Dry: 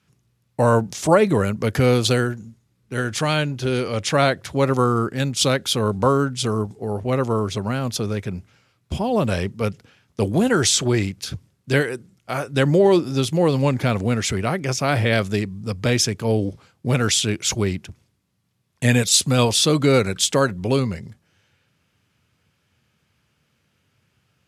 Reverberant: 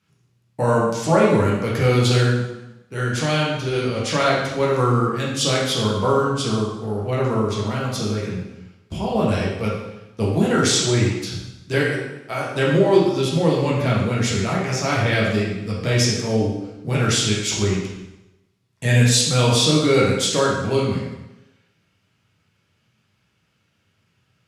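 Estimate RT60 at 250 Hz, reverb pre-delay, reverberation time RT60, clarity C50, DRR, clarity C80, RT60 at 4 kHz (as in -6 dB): 0.90 s, 4 ms, 0.95 s, 1.5 dB, -5.5 dB, 4.5 dB, 0.90 s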